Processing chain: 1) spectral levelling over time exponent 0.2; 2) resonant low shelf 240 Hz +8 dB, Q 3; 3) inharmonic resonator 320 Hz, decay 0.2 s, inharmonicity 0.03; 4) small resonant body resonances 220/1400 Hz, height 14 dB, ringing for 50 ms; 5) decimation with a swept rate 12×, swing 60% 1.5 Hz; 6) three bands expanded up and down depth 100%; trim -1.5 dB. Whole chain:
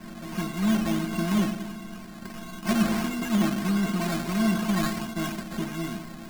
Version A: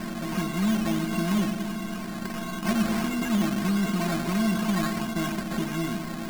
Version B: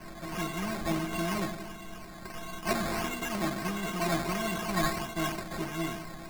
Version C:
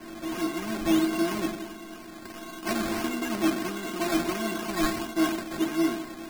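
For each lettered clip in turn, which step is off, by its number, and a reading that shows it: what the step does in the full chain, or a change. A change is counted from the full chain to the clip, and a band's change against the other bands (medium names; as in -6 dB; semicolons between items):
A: 6, crest factor change -2.5 dB; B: 4, 250 Hz band -8.0 dB; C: 2, 125 Hz band -12.0 dB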